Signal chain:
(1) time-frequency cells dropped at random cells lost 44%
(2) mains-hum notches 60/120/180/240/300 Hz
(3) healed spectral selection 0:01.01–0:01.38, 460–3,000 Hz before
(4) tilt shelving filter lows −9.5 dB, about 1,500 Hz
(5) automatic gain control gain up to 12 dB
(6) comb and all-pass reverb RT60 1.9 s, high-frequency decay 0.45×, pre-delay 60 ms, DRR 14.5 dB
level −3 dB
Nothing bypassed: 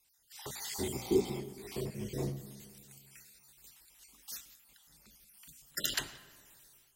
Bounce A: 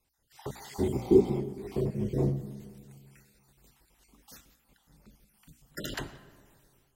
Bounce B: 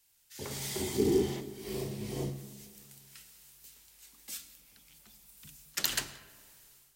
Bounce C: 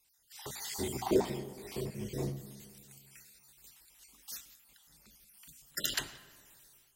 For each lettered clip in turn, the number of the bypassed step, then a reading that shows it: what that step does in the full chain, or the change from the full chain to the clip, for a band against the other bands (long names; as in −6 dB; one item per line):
4, 8 kHz band −15.0 dB
1, change in crest factor +2.0 dB
3, 1 kHz band +5.5 dB